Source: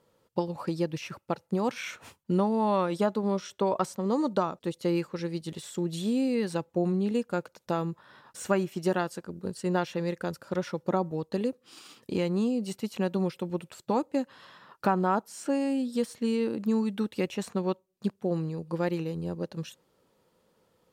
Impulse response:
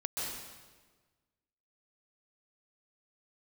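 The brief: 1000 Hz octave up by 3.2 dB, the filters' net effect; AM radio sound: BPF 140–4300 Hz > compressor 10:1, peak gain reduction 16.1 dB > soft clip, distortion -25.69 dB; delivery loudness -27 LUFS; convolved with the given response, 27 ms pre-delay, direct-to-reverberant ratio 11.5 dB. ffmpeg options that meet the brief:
-filter_complex "[0:a]equalizer=f=1k:t=o:g=4,asplit=2[a][b];[1:a]atrim=start_sample=2205,adelay=27[c];[b][c]afir=irnorm=-1:irlink=0,volume=-15.5dB[d];[a][d]amix=inputs=2:normalize=0,highpass=140,lowpass=4.3k,acompressor=threshold=-33dB:ratio=10,asoftclip=threshold=-22.5dB,volume=12.5dB"

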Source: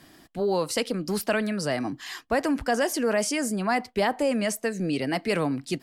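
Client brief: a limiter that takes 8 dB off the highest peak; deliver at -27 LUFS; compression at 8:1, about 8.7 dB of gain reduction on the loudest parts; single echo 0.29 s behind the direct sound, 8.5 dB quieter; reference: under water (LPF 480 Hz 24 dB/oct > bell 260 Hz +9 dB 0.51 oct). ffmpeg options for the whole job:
-af "acompressor=threshold=-29dB:ratio=8,alimiter=level_in=2.5dB:limit=-24dB:level=0:latency=1,volume=-2.5dB,lowpass=f=480:w=0.5412,lowpass=f=480:w=1.3066,equalizer=f=260:t=o:w=0.51:g=9,aecho=1:1:290:0.376,volume=5.5dB"

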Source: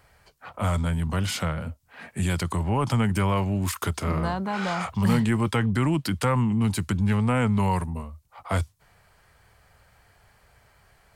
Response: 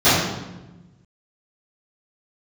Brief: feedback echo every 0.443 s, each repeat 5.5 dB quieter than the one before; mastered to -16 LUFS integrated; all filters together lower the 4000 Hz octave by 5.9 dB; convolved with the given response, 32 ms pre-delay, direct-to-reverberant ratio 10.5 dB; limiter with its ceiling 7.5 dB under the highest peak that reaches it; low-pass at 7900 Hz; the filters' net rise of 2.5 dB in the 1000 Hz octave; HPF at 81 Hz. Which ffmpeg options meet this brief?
-filter_complex "[0:a]highpass=81,lowpass=7.9k,equalizer=f=1k:t=o:g=3.5,equalizer=f=4k:t=o:g=-8.5,alimiter=limit=-19dB:level=0:latency=1,aecho=1:1:443|886|1329|1772|2215|2658|3101:0.531|0.281|0.149|0.079|0.0419|0.0222|0.0118,asplit=2[a][b];[1:a]atrim=start_sample=2205,adelay=32[c];[b][c]afir=irnorm=-1:irlink=0,volume=-36dB[d];[a][d]amix=inputs=2:normalize=0,volume=10dB"

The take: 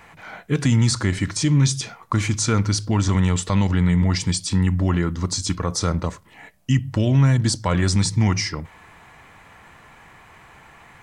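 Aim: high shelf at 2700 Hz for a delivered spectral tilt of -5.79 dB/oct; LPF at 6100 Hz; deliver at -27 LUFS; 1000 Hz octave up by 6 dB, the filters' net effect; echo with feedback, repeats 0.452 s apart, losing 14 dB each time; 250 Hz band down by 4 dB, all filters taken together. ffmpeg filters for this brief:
-af "lowpass=6.1k,equalizer=f=250:t=o:g=-6.5,equalizer=f=1k:t=o:g=8,highshelf=f=2.7k:g=-4,aecho=1:1:452|904:0.2|0.0399,volume=-5dB"

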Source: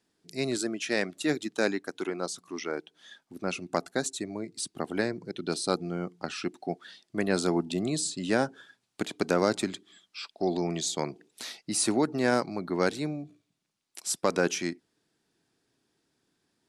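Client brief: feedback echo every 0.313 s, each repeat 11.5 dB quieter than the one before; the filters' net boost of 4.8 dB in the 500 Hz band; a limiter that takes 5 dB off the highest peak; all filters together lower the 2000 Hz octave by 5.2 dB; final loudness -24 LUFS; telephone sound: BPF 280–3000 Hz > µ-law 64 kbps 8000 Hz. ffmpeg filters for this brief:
-af "equalizer=f=500:t=o:g=7,equalizer=f=2k:t=o:g=-7,alimiter=limit=-13dB:level=0:latency=1,highpass=280,lowpass=3k,aecho=1:1:313|626|939:0.266|0.0718|0.0194,volume=6.5dB" -ar 8000 -c:a pcm_mulaw

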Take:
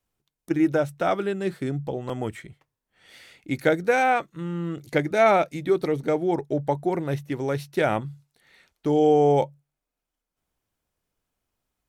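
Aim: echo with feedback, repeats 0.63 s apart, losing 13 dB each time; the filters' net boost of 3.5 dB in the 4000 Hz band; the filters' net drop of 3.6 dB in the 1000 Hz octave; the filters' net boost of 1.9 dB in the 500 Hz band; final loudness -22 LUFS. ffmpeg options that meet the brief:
-af "equalizer=f=500:t=o:g=4.5,equalizer=f=1k:t=o:g=-9,equalizer=f=4k:t=o:g=5,aecho=1:1:630|1260|1890:0.224|0.0493|0.0108,volume=1.5dB"

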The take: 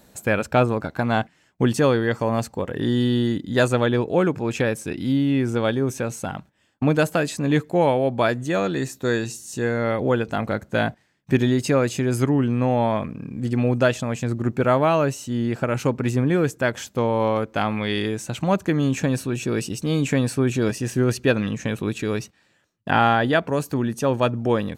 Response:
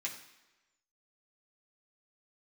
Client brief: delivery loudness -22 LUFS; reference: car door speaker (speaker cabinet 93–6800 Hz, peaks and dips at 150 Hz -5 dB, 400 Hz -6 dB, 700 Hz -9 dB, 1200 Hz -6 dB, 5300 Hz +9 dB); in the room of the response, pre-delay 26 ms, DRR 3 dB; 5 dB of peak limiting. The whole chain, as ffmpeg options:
-filter_complex "[0:a]alimiter=limit=-11dB:level=0:latency=1,asplit=2[a][b];[1:a]atrim=start_sample=2205,adelay=26[c];[b][c]afir=irnorm=-1:irlink=0,volume=-4dB[d];[a][d]amix=inputs=2:normalize=0,highpass=93,equalizer=f=150:t=q:w=4:g=-5,equalizer=f=400:t=q:w=4:g=-6,equalizer=f=700:t=q:w=4:g=-9,equalizer=f=1.2k:t=q:w=4:g=-6,equalizer=f=5.3k:t=q:w=4:g=9,lowpass=f=6.8k:w=0.5412,lowpass=f=6.8k:w=1.3066,volume=3dB"

